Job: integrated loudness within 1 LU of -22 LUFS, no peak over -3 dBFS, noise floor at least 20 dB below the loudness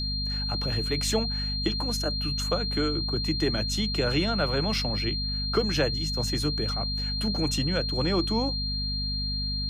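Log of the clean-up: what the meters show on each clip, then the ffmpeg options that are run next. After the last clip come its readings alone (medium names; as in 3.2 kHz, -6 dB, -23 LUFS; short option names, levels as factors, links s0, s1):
hum 50 Hz; highest harmonic 250 Hz; hum level -29 dBFS; steady tone 4.2 kHz; tone level -30 dBFS; loudness -27.0 LUFS; peak level -12.0 dBFS; loudness target -22.0 LUFS
-> -af "bandreject=f=50:t=h:w=6,bandreject=f=100:t=h:w=6,bandreject=f=150:t=h:w=6,bandreject=f=200:t=h:w=6,bandreject=f=250:t=h:w=6"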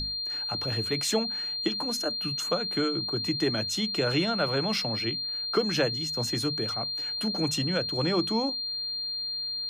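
hum not found; steady tone 4.2 kHz; tone level -30 dBFS
-> -af "bandreject=f=4200:w=30"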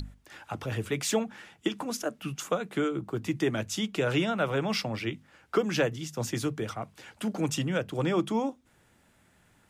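steady tone not found; loudness -31.0 LUFS; peak level -14.5 dBFS; loudness target -22.0 LUFS
-> -af "volume=2.82"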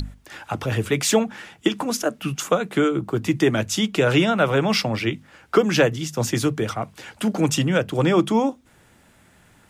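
loudness -21.5 LUFS; peak level -5.5 dBFS; noise floor -55 dBFS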